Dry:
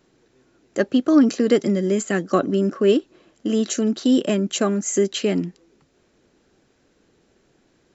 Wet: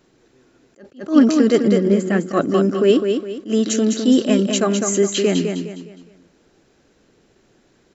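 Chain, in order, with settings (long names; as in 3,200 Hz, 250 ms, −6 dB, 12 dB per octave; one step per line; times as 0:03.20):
0:01.57–0:02.28: low-pass filter 1,300 Hz → 2,400 Hz 6 dB per octave
on a send: repeating echo 206 ms, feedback 35%, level −6 dB
on the sum: level that may rise only so fast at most 230 dB per second
level +3 dB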